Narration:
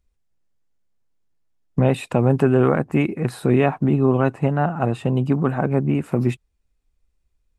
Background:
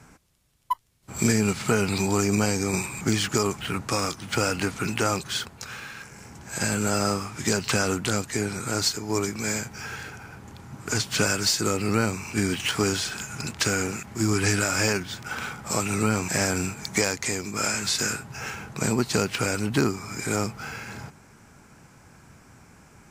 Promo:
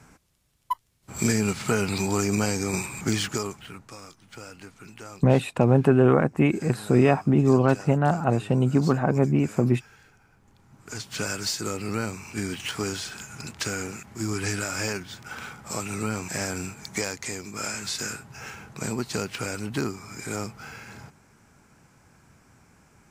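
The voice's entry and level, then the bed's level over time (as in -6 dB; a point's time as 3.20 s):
3.45 s, -1.5 dB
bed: 3.21 s -1.5 dB
3.96 s -18 dB
10.35 s -18 dB
11.33 s -5.5 dB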